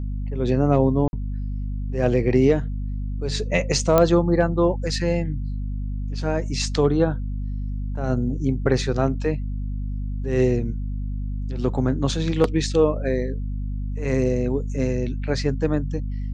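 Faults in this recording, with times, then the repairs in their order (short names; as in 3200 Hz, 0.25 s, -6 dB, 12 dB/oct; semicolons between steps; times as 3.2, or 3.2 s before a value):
hum 50 Hz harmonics 5 -27 dBFS
1.08–1.13 gap 51 ms
3.98 pop -4 dBFS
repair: de-click; de-hum 50 Hz, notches 5; interpolate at 1.08, 51 ms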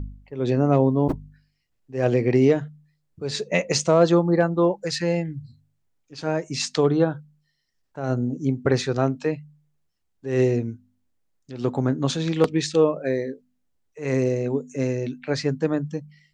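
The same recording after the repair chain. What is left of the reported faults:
none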